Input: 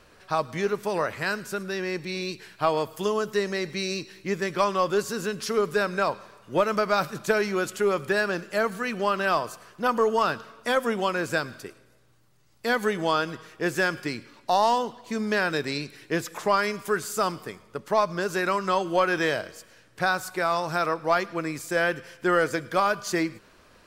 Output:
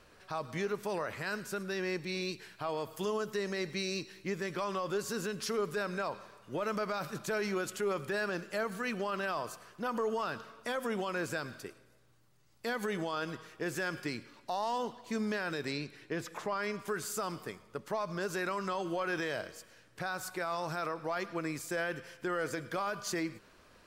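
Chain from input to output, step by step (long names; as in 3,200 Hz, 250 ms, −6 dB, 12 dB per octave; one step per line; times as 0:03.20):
0:15.72–0:16.88: high-shelf EQ 6,200 Hz −10 dB
brickwall limiter −20.5 dBFS, peak gain reduction 11.5 dB
level −5 dB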